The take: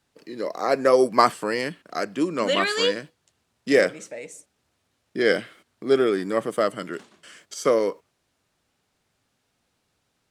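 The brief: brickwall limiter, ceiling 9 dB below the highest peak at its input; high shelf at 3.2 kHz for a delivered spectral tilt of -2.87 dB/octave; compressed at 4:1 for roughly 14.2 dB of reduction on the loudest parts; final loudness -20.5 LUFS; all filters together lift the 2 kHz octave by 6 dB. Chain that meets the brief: peaking EQ 2 kHz +6 dB; treble shelf 3.2 kHz +4 dB; compression 4:1, threshold -27 dBFS; trim +13 dB; peak limiter -8 dBFS

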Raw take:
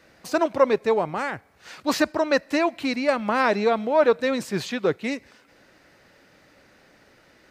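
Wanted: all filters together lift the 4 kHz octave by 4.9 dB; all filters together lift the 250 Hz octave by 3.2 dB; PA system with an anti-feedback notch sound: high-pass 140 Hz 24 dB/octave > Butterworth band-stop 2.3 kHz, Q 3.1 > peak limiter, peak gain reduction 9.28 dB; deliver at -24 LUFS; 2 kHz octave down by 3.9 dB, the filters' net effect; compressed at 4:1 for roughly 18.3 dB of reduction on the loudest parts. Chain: peaking EQ 250 Hz +4 dB; peaking EQ 2 kHz -4.5 dB; peaking EQ 4 kHz +6.5 dB; compression 4:1, threshold -36 dBFS; high-pass 140 Hz 24 dB/octave; Butterworth band-stop 2.3 kHz, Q 3.1; trim +17.5 dB; peak limiter -14.5 dBFS

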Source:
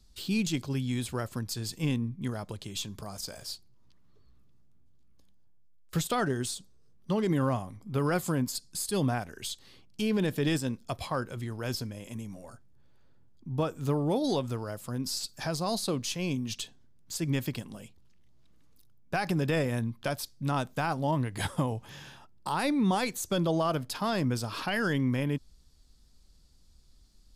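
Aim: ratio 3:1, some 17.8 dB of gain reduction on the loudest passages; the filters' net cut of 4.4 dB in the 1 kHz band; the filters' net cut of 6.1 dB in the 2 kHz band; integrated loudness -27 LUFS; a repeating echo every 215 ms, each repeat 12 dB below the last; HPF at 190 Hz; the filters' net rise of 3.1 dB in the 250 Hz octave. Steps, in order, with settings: high-pass 190 Hz; peaking EQ 250 Hz +6 dB; peaking EQ 1 kHz -5 dB; peaking EQ 2 kHz -6.5 dB; compression 3:1, threshold -47 dBFS; feedback delay 215 ms, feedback 25%, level -12 dB; trim +19 dB

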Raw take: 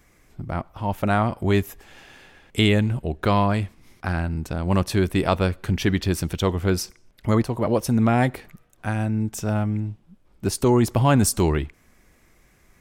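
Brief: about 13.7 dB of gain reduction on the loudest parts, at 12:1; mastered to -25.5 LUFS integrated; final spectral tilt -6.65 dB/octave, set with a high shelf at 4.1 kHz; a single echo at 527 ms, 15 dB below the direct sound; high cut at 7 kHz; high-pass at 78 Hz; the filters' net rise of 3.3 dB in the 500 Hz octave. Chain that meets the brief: high-pass 78 Hz; low-pass 7 kHz; peaking EQ 500 Hz +4.5 dB; treble shelf 4.1 kHz -9 dB; compression 12:1, threshold -27 dBFS; delay 527 ms -15 dB; trim +7.5 dB

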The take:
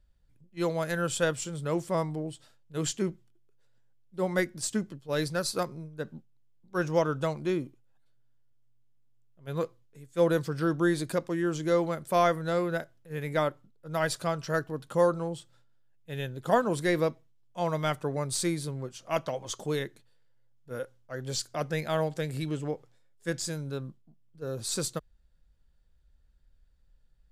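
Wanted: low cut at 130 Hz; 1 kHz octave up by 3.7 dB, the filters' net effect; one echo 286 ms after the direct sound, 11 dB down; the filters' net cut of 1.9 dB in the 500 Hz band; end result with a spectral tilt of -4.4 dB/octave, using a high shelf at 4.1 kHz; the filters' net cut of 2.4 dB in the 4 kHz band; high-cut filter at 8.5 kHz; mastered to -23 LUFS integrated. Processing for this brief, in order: high-pass 130 Hz; low-pass 8.5 kHz; peaking EQ 500 Hz -4 dB; peaking EQ 1 kHz +6 dB; peaking EQ 4 kHz -8 dB; treble shelf 4.1 kHz +8 dB; delay 286 ms -11 dB; trim +7.5 dB

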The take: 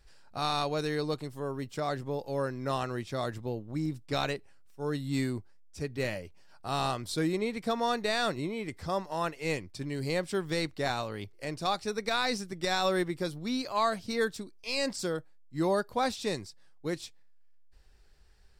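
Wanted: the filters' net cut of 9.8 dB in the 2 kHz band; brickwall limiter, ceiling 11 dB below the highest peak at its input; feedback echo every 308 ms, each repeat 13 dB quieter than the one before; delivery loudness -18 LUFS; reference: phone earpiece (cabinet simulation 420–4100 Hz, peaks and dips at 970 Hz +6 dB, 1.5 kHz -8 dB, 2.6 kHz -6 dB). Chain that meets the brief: peaking EQ 2 kHz -6.5 dB; peak limiter -28.5 dBFS; cabinet simulation 420–4100 Hz, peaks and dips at 970 Hz +6 dB, 1.5 kHz -8 dB, 2.6 kHz -6 dB; feedback delay 308 ms, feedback 22%, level -13 dB; trim +24 dB

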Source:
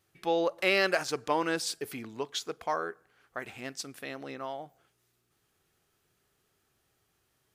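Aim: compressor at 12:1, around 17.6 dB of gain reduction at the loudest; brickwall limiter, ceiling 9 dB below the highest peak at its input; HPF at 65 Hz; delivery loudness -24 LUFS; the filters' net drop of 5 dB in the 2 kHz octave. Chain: high-pass 65 Hz; peaking EQ 2 kHz -6.5 dB; compression 12:1, threshold -42 dBFS; trim +25.5 dB; peak limiter -12 dBFS

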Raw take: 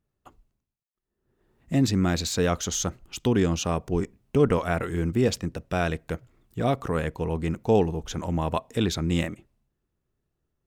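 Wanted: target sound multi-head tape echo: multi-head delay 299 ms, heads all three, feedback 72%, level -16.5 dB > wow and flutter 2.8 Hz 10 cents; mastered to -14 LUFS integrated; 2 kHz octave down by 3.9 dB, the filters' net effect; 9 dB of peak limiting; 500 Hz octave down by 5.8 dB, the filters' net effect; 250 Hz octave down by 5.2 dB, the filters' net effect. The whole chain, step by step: peaking EQ 250 Hz -6 dB; peaking EQ 500 Hz -5 dB; peaking EQ 2 kHz -5 dB; peak limiter -22.5 dBFS; multi-head delay 299 ms, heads all three, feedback 72%, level -16.5 dB; wow and flutter 2.8 Hz 10 cents; trim +19 dB

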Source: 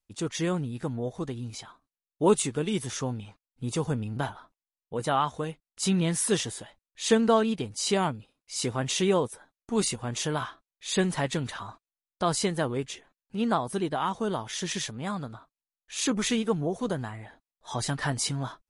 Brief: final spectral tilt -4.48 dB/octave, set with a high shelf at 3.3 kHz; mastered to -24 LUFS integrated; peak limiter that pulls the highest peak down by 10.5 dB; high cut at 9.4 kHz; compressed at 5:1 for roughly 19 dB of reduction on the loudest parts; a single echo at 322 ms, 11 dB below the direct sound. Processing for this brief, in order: low-pass 9.4 kHz; treble shelf 3.3 kHz -7 dB; compression 5:1, threshold -39 dBFS; peak limiter -37.5 dBFS; delay 322 ms -11 dB; trim +22.5 dB

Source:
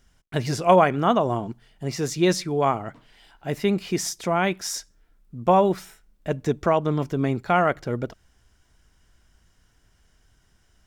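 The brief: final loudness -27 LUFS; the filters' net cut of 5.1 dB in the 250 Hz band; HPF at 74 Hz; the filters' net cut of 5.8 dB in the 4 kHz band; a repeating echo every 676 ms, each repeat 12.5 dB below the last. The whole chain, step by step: high-pass 74 Hz; peaking EQ 250 Hz -8 dB; peaking EQ 4 kHz -8.5 dB; feedback delay 676 ms, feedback 24%, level -12.5 dB; trim -1.5 dB

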